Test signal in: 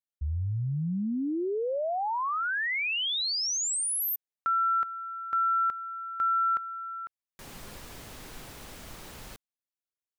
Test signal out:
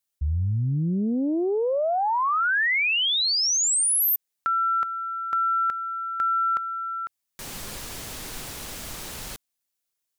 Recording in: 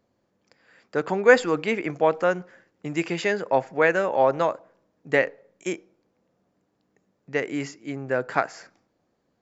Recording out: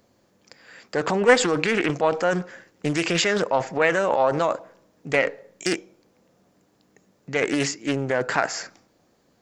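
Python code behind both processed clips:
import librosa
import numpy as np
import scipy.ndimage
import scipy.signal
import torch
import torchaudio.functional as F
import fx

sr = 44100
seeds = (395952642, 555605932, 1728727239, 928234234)

p1 = fx.high_shelf(x, sr, hz=3700.0, db=9.0)
p2 = fx.over_compress(p1, sr, threshold_db=-28.0, ratio=-0.5)
p3 = p1 + (p2 * librosa.db_to_amplitude(0.0))
p4 = fx.doppler_dist(p3, sr, depth_ms=0.38)
y = p4 * librosa.db_to_amplitude(-1.5)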